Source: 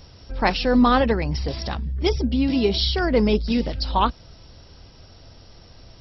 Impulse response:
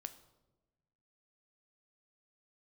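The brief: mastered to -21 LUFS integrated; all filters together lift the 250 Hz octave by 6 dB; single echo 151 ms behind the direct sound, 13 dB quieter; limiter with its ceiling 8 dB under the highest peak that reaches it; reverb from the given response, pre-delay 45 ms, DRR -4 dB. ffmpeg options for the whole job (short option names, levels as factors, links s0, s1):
-filter_complex "[0:a]equalizer=f=250:t=o:g=6.5,alimiter=limit=0.299:level=0:latency=1,aecho=1:1:151:0.224,asplit=2[s0][s1];[1:a]atrim=start_sample=2205,adelay=45[s2];[s1][s2]afir=irnorm=-1:irlink=0,volume=2.51[s3];[s0][s3]amix=inputs=2:normalize=0,volume=0.473"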